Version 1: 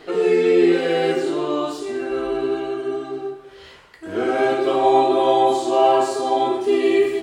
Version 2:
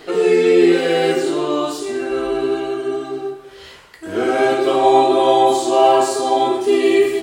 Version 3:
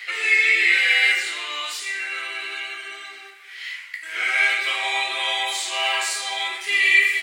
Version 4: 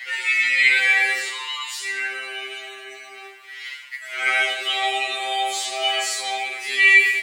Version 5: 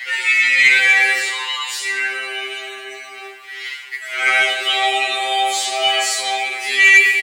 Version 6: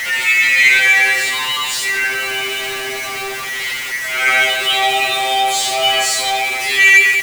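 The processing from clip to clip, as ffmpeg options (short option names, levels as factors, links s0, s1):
-af "highshelf=f=5700:g=8.5,volume=1.41"
-af "highpass=f=2100:t=q:w=6.4"
-af "acrusher=bits=10:mix=0:aa=0.000001,afftfilt=real='re*2.45*eq(mod(b,6),0)':imag='im*2.45*eq(mod(b,6),0)':win_size=2048:overlap=0.75,volume=1.33"
-filter_complex "[0:a]asplit=2[s0][s1];[s1]adelay=333,lowpass=f=2000:p=1,volume=0.141,asplit=2[s2][s3];[s3]adelay=333,lowpass=f=2000:p=1,volume=0.54,asplit=2[s4][s5];[s5]adelay=333,lowpass=f=2000:p=1,volume=0.54,asplit=2[s6][s7];[s7]adelay=333,lowpass=f=2000:p=1,volume=0.54,asplit=2[s8][s9];[s9]adelay=333,lowpass=f=2000:p=1,volume=0.54[s10];[s0][s2][s4][s6][s8][s10]amix=inputs=6:normalize=0,acontrast=70,volume=0.891"
-af "aeval=exprs='val(0)+0.5*0.1*sgn(val(0))':c=same"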